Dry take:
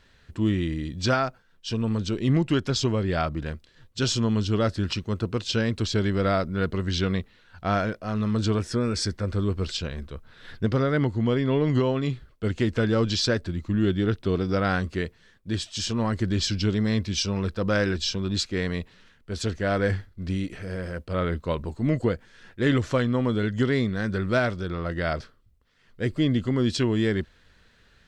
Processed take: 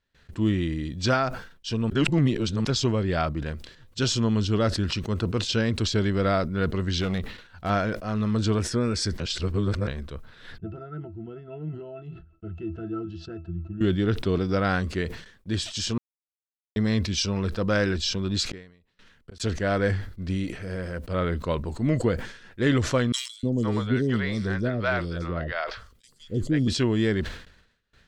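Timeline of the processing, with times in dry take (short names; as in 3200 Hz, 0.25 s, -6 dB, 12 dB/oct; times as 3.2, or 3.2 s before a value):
1.9–2.65 reverse
7.01–7.7 overloaded stage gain 21.5 dB
9.2–9.87 reverse
10.58–13.81 octave resonator E, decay 0.14 s
15.98–16.76 mute
18.5–19.4 flipped gate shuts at -31 dBFS, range -39 dB
23.12–26.68 three bands offset in time highs, lows, mids 0.31/0.51 s, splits 540/4600 Hz
whole clip: gate with hold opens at -46 dBFS; sustainer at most 93 dB/s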